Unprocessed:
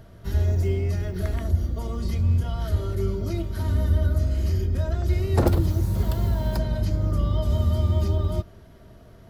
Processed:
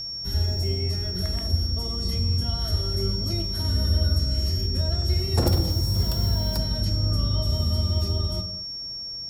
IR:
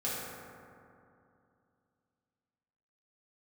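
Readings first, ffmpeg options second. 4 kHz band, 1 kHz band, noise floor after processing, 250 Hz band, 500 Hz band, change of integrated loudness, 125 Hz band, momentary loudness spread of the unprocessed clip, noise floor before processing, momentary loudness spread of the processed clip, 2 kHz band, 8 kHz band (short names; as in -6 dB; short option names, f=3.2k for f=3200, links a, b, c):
+17.5 dB, -3.5 dB, -34 dBFS, -2.0 dB, -3.5 dB, 0.0 dB, -1.5 dB, 6 LU, -48 dBFS, 5 LU, -3.0 dB, +5.5 dB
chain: -filter_complex "[0:a]bass=f=250:g=2,treble=f=4k:g=10,asplit=2[a][b];[1:a]atrim=start_sample=2205,afade=t=out:st=0.29:d=0.01,atrim=end_sample=13230[c];[b][c]afir=irnorm=-1:irlink=0,volume=-10dB[d];[a][d]amix=inputs=2:normalize=0,aeval=exprs='val(0)+0.0631*sin(2*PI*5500*n/s)':c=same,dynaudnorm=f=250:g=17:m=3dB,volume=-6.5dB"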